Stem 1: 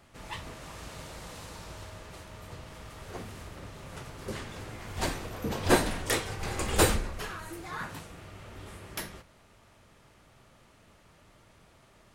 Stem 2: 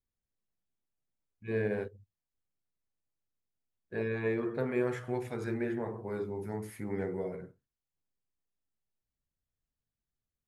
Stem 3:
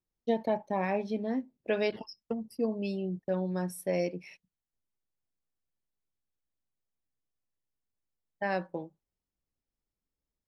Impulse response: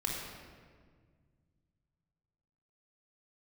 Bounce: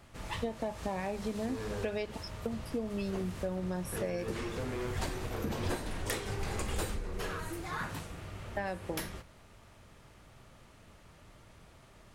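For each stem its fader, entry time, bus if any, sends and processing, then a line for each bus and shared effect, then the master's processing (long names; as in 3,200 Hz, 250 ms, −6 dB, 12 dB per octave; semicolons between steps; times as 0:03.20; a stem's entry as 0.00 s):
+0.5 dB, 0.00 s, no send, low-shelf EQ 120 Hz +5.5 dB
−1.0 dB, 0.00 s, no send, soft clipping −33 dBFS, distortion −10 dB
+1.0 dB, 0.15 s, no send, no processing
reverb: not used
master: downward compressor 10 to 1, threshold −31 dBFS, peak gain reduction 16.5 dB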